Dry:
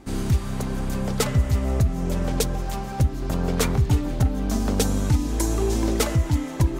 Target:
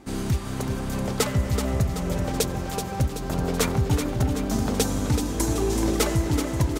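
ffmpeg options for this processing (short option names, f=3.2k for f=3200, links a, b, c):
-af "lowshelf=f=88:g=-8,aecho=1:1:379|758|1137|1516|1895|2274|2653:0.422|0.232|0.128|0.0702|0.0386|0.0212|0.0117"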